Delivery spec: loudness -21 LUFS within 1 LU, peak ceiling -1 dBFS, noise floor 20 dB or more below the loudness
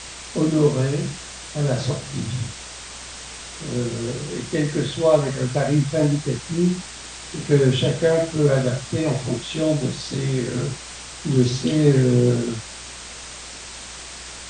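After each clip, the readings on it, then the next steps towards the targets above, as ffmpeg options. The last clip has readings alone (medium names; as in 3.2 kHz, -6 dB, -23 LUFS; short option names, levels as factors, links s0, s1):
hum 60 Hz; highest harmonic 180 Hz; hum level -43 dBFS; noise floor -37 dBFS; noise floor target -42 dBFS; loudness -22.0 LUFS; peak level -3.5 dBFS; loudness target -21.0 LUFS
-> -af "bandreject=f=60:t=h:w=4,bandreject=f=120:t=h:w=4,bandreject=f=180:t=h:w=4"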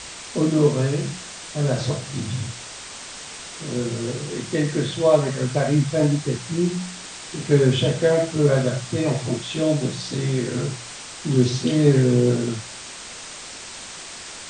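hum not found; noise floor -37 dBFS; noise floor target -42 dBFS
-> -af "afftdn=nr=6:nf=-37"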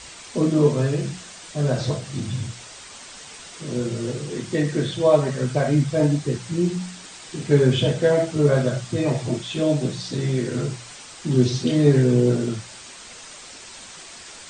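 noise floor -42 dBFS; loudness -22.0 LUFS; peak level -3.5 dBFS; loudness target -21.0 LUFS
-> -af "volume=1.12"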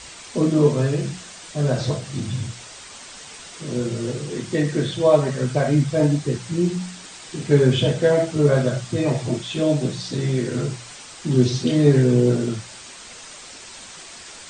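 loudness -21.0 LUFS; peak level -2.5 dBFS; noise floor -41 dBFS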